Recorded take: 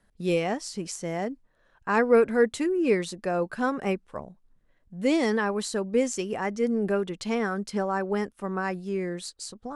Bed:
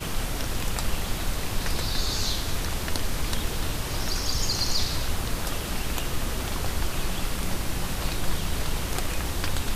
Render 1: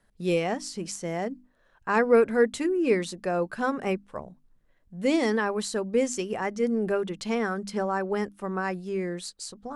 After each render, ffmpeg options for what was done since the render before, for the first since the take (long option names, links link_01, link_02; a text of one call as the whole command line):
ffmpeg -i in.wav -af "bandreject=frequency=50:width_type=h:width=6,bandreject=frequency=100:width_type=h:width=6,bandreject=frequency=150:width_type=h:width=6,bandreject=frequency=200:width_type=h:width=6,bandreject=frequency=250:width_type=h:width=6,bandreject=frequency=300:width_type=h:width=6" out.wav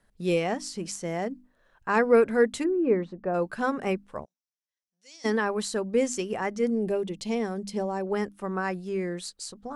ffmpeg -i in.wav -filter_complex "[0:a]asplit=3[link_01][link_02][link_03];[link_01]afade=type=out:start_time=2.63:duration=0.02[link_04];[link_02]lowpass=1200,afade=type=in:start_time=2.63:duration=0.02,afade=type=out:start_time=3.33:duration=0.02[link_05];[link_03]afade=type=in:start_time=3.33:duration=0.02[link_06];[link_04][link_05][link_06]amix=inputs=3:normalize=0,asplit=3[link_07][link_08][link_09];[link_07]afade=type=out:start_time=4.24:duration=0.02[link_10];[link_08]bandpass=frequency=5700:width_type=q:width=5.6,afade=type=in:start_time=4.24:duration=0.02,afade=type=out:start_time=5.24:duration=0.02[link_11];[link_09]afade=type=in:start_time=5.24:duration=0.02[link_12];[link_10][link_11][link_12]amix=inputs=3:normalize=0,asettb=1/sr,asplit=3[link_13][link_14][link_15];[link_13]atrim=end=6.704[link_16];[link_14]atrim=start=6.7:end=8.07,asetpts=PTS-STARTPTS,afade=type=in:duration=0.004:curve=qsin,afade=type=out:start_time=1.366:duration=0.004:curve=qsin,equalizer=frequency=1400:width_type=o:width=0.82:gain=-14[link_17];[link_15]atrim=start=8.066[link_18];[link_16][link_17]acrossfade=duration=0.004:curve1=hsin:curve2=qsin[link_19];[link_19][link_18]acrossfade=duration=0.004:curve1=qsin:curve2=hsin" out.wav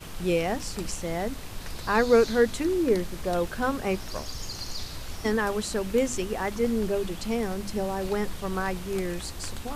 ffmpeg -i in.wav -i bed.wav -filter_complex "[1:a]volume=-10dB[link_01];[0:a][link_01]amix=inputs=2:normalize=0" out.wav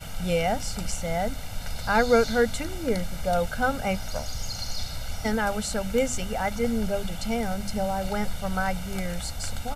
ffmpeg -i in.wav -af "aecho=1:1:1.4:0.85" out.wav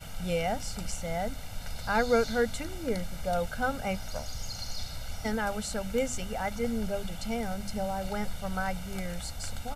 ffmpeg -i in.wav -af "volume=-5dB" out.wav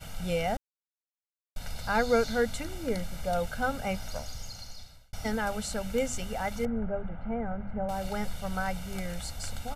ffmpeg -i in.wav -filter_complex "[0:a]asettb=1/sr,asplit=3[link_01][link_02][link_03];[link_01]atrim=end=6.654[link_04];[link_02]atrim=start=6.65:end=7.89,asetpts=PTS-STARTPTS,afade=type=in:duration=0.004:curve=qsin,afade=type=out:start_time=1.236:duration=0.004:curve=qsin,lowpass=frequency=1700:width=0.5412,lowpass=frequency=1700:width=1.3066[link_05];[link_03]atrim=start=7.886[link_06];[link_04][link_05]acrossfade=duration=0.004:curve1=hsin:curve2=qsin[link_07];[link_07][link_06]acrossfade=duration=0.004:curve1=qsin:curve2=hsin,asplit=4[link_08][link_09][link_10][link_11];[link_08]atrim=end=0.57,asetpts=PTS-STARTPTS,afade=type=out:start_time=0.566:duration=0.004:curve=hsin[link_12];[link_09]atrim=start=0.57:end=1.56,asetpts=PTS-STARTPTS,volume=0[link_13];[link_10]atrim=start=1.56:end=5.13,asetpts=PTS-STARTPTS,afade=type=in:duration=0.004:curve=hsin,afade=type=out:start_time=2.54:duration=1.03[link_14];[link_11]atrim=start=5.13,asetpts=PTS-STARTPTS,afade=type=in:duration=0.004:curve=hsin[link_15];[link_12][link_13][link_14][link_15]concat=n=4:v=0:a=1" out.wav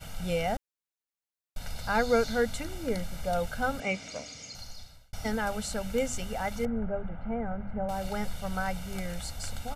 ffmpeg -i in.wav -filter_complex "[0:a]asettb=1/sr,asplit=3[link_01][link_02][link_03];[link_01]atrim=end=3.804[link_04];[link_02]atrim=start=3.8:end=4.55,asetpts=PTS-STARTPTS,afade=type=in:duration=0.004:curve=qsin,afade=type=out:start_time=0.746:duration=0.004:curve=qsin,highpass=170,equalizer=frequency=290:width_type=q:width=4:gain=9,equalizer=frequency=430:width_type=q:width=4:gain=4,equalizer=frequency=850:width_type=q:width=4:gain=-8,equalizer=frequency=1500:width_type=q:width=4:gain=-5,equalizer=frequency=2300:width_type=q:width=4:gain=9,equalizer=frequency=6900:width_type=q:width=4:gain=4,lowpass=frequency=7700:width=0.5412,lowpass=frequency=7700:width=1.3066[link_05];[link_03]atrim=start=4.546[link_06];[link_04][link_05]acrossfade=duration=0.004:curve1=hsin:curve2=qsin[link_07];[link_07][link_06]acrossfade=duration=0.004:curve1=qsin:curve2=hsin" out.wav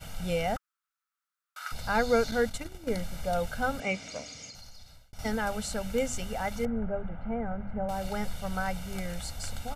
ffmpeg -i in.wav -filter_complex "[0:a]asettb=1/sr,asplit=3[link_01][link_02][link_03];[link_01]atrim=end=0.564[link_04];[link_02]atrim=start=0.56:end=1.72,asetpts=PTS-STARTPTS,afade=type=in:duration=0.004:curve=qsin,afade=type=out:start_time=1.156:duration=0.004:curve=qsin,highpass=frequency=1300:width_type=q:width=9[link_05];[link_03]atrim=start=1.716[link_06];[link_04][link_05]acrossfade=duration=0.004:curve1=hsin:curve2=qsin[link_07];[link_07][link_06]acrossfade=duration=0.004:curve1=qsin:curve2=hsin,asettb=1/sr,asplit=3[link_08][link_09][link_10];[link_08]atrim=end=2.314[link_11];[link_09]atrim=start=2.31:end=2.99,asetpts=PTS-STARTPTS,afade=type=in:duration=0.004:curve=qsin,afade=type=out:start_time=0.676:duration=0.004:curve=qsin,agate=range=-10dB:threshold=-35dB:ratio=16:release=100:detection=peak[link_12];[link_10]atrim=start=2.986[link_13];[link_11][link_12]acrossfade=duration=0.004:curve1=hsin:curve2=qsin[link_14];[link_14][link_13]acrossfade=duration=0.004:curve1=qsin:curve2=hsin,asettb=1/sr,asplit=3[link_15][link_16][link_17];[link_15]atrim=end=4.504[link_18];[link_16]atrim=start=4.5:end=5.19,asetpts=PTS-STARTPTS,afade=type=in:duration=0.004:curve=qsin,afade=type=out:start_time=0.686:duration=0.004:curve=qsin,acompressor=threshold=-44dB:ratio=4:attack=3.2:release=140:knee=1:detection=peak[link_19];[link_17]atrim=start=5.186[link_20];[link_18][link_19]acrossfade=duration=0.004:curve1=hsin:curve2=qsin[link_21];[link_21][link_20]acrossfade=duration=0.004:curve1=qsin:curve2=hsin" out.wav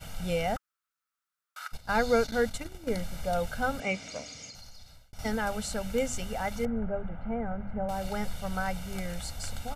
ffmpeg -i in.wav -filter_complex "[0:a]asplit=3[link_01][link_02][link_03];[link_01]afade=type=out:start_time=1.66:duration=0.02[link_04];[link_02]agate=range=-15dB:threshold=-34dB:ratio=16:release=100:detection=peak,afade=type=in:start_time=1.66:duration=0.02,afade=type=out:start_time=2.37:duration=0.02[link_05];[link_03]afade=type=in:start_time=2.37:duration=0.02[link_06];[link_04][link_05][link_06]amix=inputs=3:normalize=0" out.wav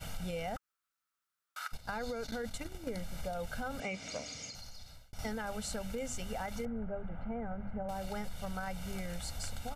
ffmpeg -i in.wav -af "alimiter=limit=-23.5dB:level=0:latency=1:release=15,acompressor=threshold=-35dB:ratio=6" out.wav